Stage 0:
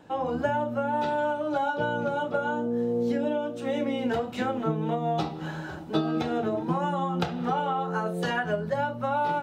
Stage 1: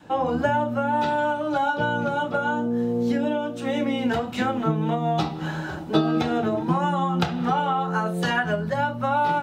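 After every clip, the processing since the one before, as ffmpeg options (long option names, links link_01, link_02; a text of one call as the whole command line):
ffmpeg -i in.wav -af "adynamicequalizer=threshold=0.00891:dfrequency=480:dqfactor=1.4:tfrequency=480:tqfactor=1.4:attack=5:release=100:ratio=0.375:range=3:mode=cutabove:tftype=bell,volume=6dB" out.wav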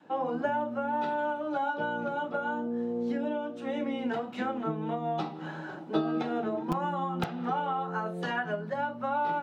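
ffmpeg -i in.wav -filter_complex "[0:a]lowpass=frequency=2100:poles=1,acrossover=split=160|1600[link_01][link_02][link_03];[link_01]acrusher=bits=3:mix=0:aa=0.000001[link_04];[link_04][link_02][link_03]amix=inputs=3:normalize=0,volume=-6.5dB" out.wav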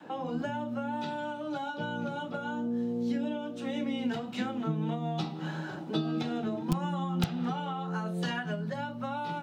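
ffmpeg -i in.wav -filter_complex "[0:a]acrossover=split=200|3000[link_01][link_02][link_03];[link_02]acompressor=threshold=-51dB:ratio=2.5[link_04];[link_01][link_04][link_03]amix=inputs=3:normalize=0,volume=8dB" out.wav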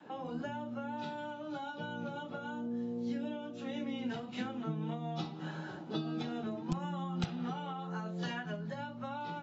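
ffmpeg -i in.wav -af "volume=-6dB" -ar 22050 -c:a aac -b:a 24k out.aac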